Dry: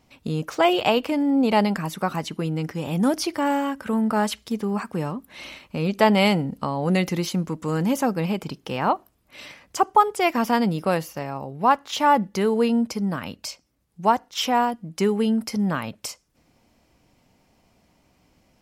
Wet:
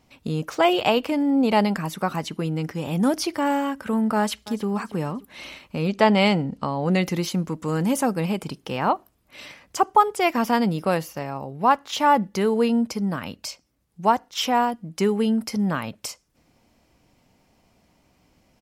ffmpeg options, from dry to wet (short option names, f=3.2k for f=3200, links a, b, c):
-filter_complex "[0:a]asplit=2[a][b];[b]afade=t=in:st=4.17:d=0.01,afade=t=out:st=4.66:d=0.01,aecho=0:1:290|580|870:0.133352|0.0533409|0.0213363[c];[a][c]amix=inputs=2:normalize=0,asettb=1/sr,asplit=3[d][e][f];[d]atrim=end=5.924[g];[e]atrim=start=5.92:end=7.02,asetpts=PTS-STARTPTS,afade=t=in:d=0.004:c=qsin,afade=t=out:st=1.096:d=0.004:c=qsin,lowpass=7k[h];[f]atrim=start=7.016[i];[g][h]acrossfade=d=0.004:c1=hsin:c2=qsin[j];[j][i]acrossfade=d=0.004:c1=qsin:c2=hsin,asettb=1/sr,asplit=3[k][l][m];[k]atrim=end=7.844[n];[l]atrim=start=7.84:end=8.62,asetpts=PTS-STARTPTS,afade=t=in:d=0.004:c=qsin,afade=t=out:st=0.776:d=0.004:c=qsin,equalizer=f=9.2k:t=o:w=0.35:g=9.5[o];[m]atrim=start=8.616[p];[n][o]acrossfade=d=0.004:c1=hsin:c2=qsin[q];[q][p]acrossfade=d=0.004:c1=qsin:c2=hsin"